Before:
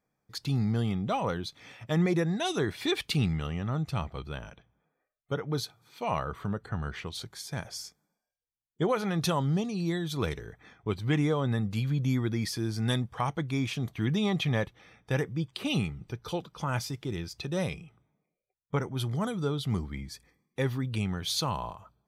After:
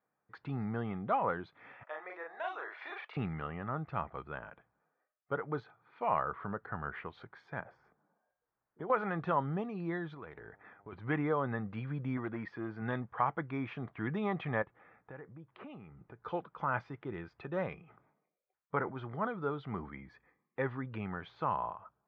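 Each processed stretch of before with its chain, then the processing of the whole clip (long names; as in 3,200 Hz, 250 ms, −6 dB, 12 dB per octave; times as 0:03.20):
0:01.83–0:03.17: downward compressor 2.5 to 1, threshold −33 dBFS + high-pass filter 550 Hz 24 dB per octave + double-tracking delay 38 ms −2.5 dB
0:07.60–0:08.90: parametric band 4,200 Hz −14 dB 2.4 octaves + multiband upward and downward compressor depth 70%
0:10.13–0:10.92: downward compressor 8 to 1, threshold −38 dBFS + hum with harmonics 100 Hz, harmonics 9, −65 dBFS −3 dB per octave
0:12.17–0:12.82: low-pass filter 3,200 Hz 6 dB per octave + low-shelf EQ 92 Hz −8 dB + gain into a clipping stage and back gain 25 dB
0:14.62–0:16.23: low-pass filter 1,800 Hz 6 dB per octave + downward compressor 5 to 1, threshold −40 dBFS
0:17.82–0:20.06: low-shelf EQ 130 Hz −4.5 dB + level that may fall only so fast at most 78 dB per second
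whole clip: de-essing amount 85%; low-pass filter 1,600 Hz 24 dB per octave; spectral tilt +4 dB per octave; level +1 dB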